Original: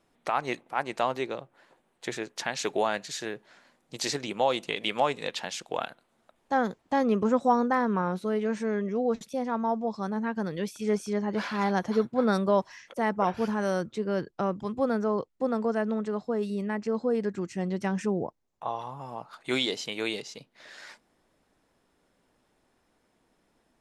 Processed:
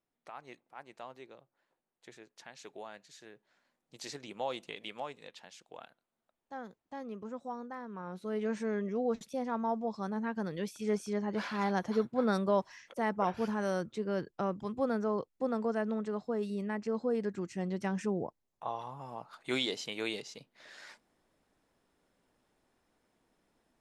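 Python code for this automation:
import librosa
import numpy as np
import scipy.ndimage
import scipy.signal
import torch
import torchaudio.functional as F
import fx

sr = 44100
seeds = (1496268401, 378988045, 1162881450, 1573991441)

y = fx.gain(x, sr, db=fx.line((3.12, -19.5), (4.53, -10.5), (5.32, -18.0), (7.9, -18.0), (8.43, -5.0)))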